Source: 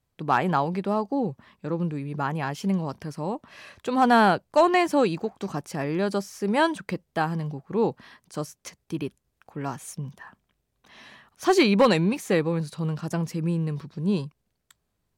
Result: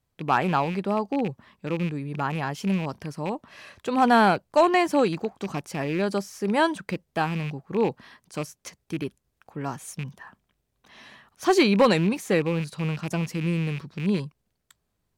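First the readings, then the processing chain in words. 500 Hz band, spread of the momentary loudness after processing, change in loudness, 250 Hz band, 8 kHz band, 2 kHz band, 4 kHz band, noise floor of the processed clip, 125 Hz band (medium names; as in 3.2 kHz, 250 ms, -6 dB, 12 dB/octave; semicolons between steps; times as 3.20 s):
0.0 dB, 16 LU, 0.0 dB, 0.0 dB, 0.0 dB, +0.5 dB, +0.5 dB, -77 dBFS, 0.0 dB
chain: rattle on loud lows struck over -30 dBFS, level -27 dBFS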